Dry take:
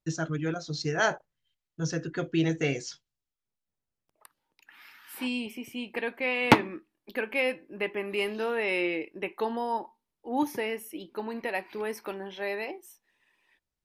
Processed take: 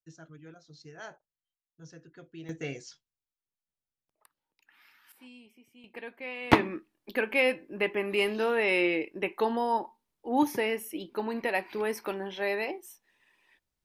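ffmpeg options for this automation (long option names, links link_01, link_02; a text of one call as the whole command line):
ffmpeg -i in.wav -af "asetnsamples=nb_out_samples=441:pad=0,asendcmd='2.49 volume volume -8.5dB;5.12 volume volume -20dB;5.84 volume volume -10dB;6.53 volume volume 2.5dB',volume=-19dB" out.wav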